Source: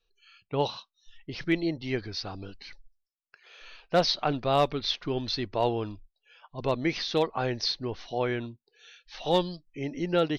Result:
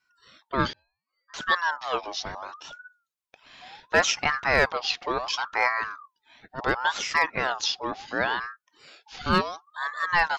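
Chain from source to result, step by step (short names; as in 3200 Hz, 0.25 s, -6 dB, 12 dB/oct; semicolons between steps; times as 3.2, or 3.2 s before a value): 0.73–1.34 octave resonator G#, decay 0.55 s; ring modulator with a swept carrier 1100 Hz, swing 35%, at 0.7 Hz; gain +5 dB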